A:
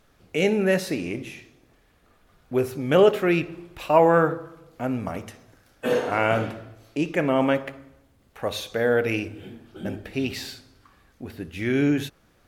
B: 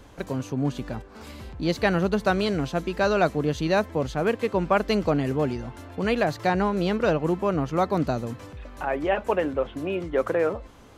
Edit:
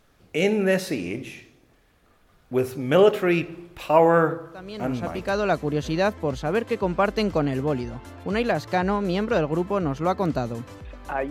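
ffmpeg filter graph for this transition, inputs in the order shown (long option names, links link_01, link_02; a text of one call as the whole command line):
ffmpeg -i cue0.wav -i cue1.wav -filter_complex "[0:a]apad=whole_dur=11.3,atrim=end=11.3,atrim=end=5.99,asetpts=PTS-STARTPTS[link_01];[1:a]atrim=start=2.19:end=9.02,asetpts=PTS-STARTPTS[link_02];[link_01][link_02]acrossfade=duration=1.52:curve1=qsin:curve2=qsin" out.wav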